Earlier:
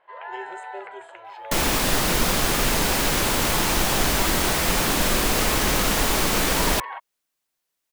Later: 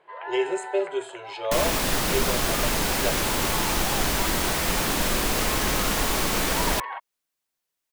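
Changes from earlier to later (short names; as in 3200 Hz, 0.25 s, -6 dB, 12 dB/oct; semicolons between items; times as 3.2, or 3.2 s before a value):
speech +11.5 dB; second sound -3.0 dB; reverb: on, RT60 0.65 s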